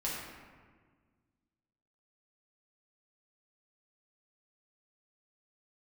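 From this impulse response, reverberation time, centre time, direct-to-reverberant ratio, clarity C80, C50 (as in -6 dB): 1.6 s, 87 ms, -6.5 dB, 2.0 dB, -0.5 dB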